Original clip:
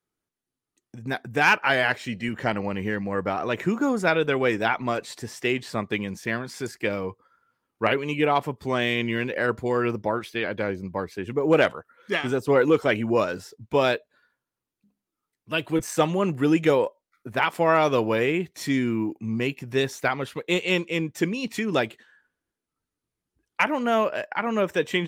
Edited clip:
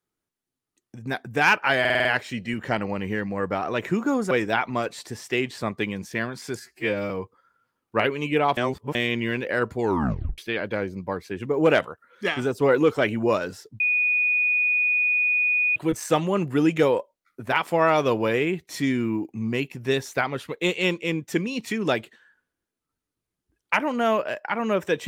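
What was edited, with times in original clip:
1.8 stutter 0.05 s, 6 plays
4.06–4.43 cut
6.72–6.97 stretch 2×
8.44–8.82 reverse
9.67 tape stop 0.58 s
13.67–15.63 bleep 2470 Hz -18.5 dBFS

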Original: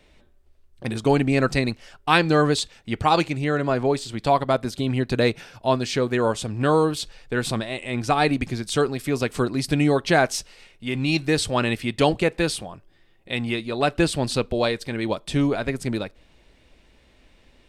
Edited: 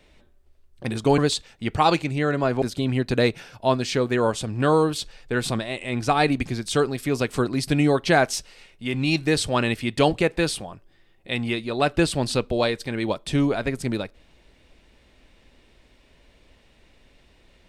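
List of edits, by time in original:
1.18–2.44 cut
3.88–4.63 cut

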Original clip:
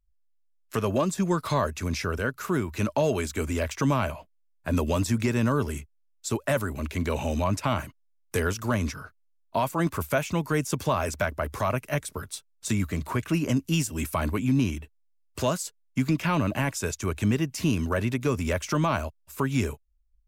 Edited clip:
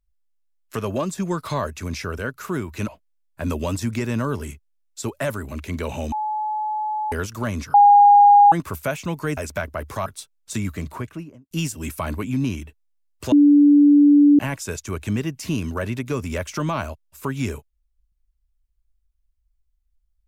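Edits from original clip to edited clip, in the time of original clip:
2.88–4.15 cut
7.39–8.39 bleep 855 Hz -22 dBFS
9.01–9.79 bleep 817 Hz -7.5 dBFS
10.64–11.01 cut
11.7–12.21 cut
12.92–13.66 studio fade out
15.47–16.54 bleep 290 Hz -9 dBFS

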